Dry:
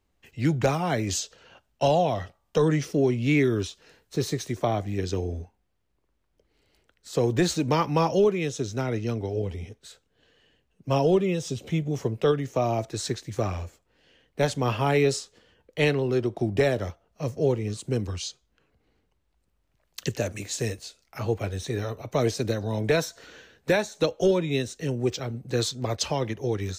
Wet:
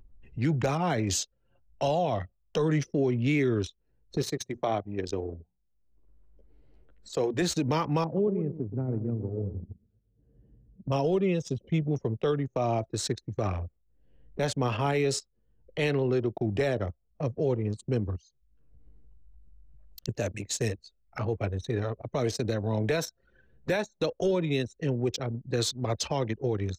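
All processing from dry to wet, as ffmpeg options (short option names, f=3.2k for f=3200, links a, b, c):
-filter_complex "[0:a]asettb=1/sr,asplit=3[a][b][c];[a]atrim=end=4.224[d];[b]atrim=start=4.22:end=7.42,asetpts=PTS-STARTPTS,afade=t=in:d=0.004:c=qsin,afade=t=out:st=3.196:d=0.004:c=qsin,lowshelf=f=180:g=-11,bandreject=f=60:t=h:w=6,bandreject=f=120:t=h:w=6,bandreject=f=180:t=h:w=6,bandreject=f=240:t=h:w=6[e];[c]atrim=start=7.416[f];[d][e]acrossfade=d=0.004:c1=hsin:c2=qsin[g];[g][f]acrossfade=d=0.004:c1=qsin:c2=hsin,asettb=1/sr,asplit=3[h][i][j];[h]atrim=end=8.044[k];[i]atrim=start=8.04:end=10.92,asetpts=PTS-STARTPTS,afade=t=in:d=0.004:c=qsin,afade=t=out:st=2.876:d=0.004:c=qsin,bandpass=f=160:t=q:w=0.75,aecho=1:1:123|246|369:0.335|0.0837|0.0209,atrim=end_sample=127008[l];[j]atrim=start=10.916[m];[k][l]acrossfade=d=0.004:c1=hsin:c2=qsin[n];[n][m]acrossfade=d=0.004:c1=qsin:c2=hsin,asettb=1/sr,asplit=3[o][p][q];[o]atrim=end=18.164[r];[p]atrim=start=18.16:end=20.09,asetpts=PTS-STARTPTS,afade=t=in:d=0.004:c=qsin,afade=t=out:st=1.926:d=0.004:c=qsin,highshelf=f=6.4k:g=10,acompressor=threshold=-41dB:ratio=4:attack=3.2:release=140:knee=1:detection=peak[s];[q]atrim=start=20.086[t];[r][s]acrossfade=d=0.004:c1=hsin:c2=qsin[u];[u][t]acrossfade=d=0.004:c1=qsin:c2=hsin,anlmdn=6.31,alimiter=limit=-18dB:level=0:latency=1:release=50,acompressor=mode=upward:threshold=-32dB:ratio=2.5"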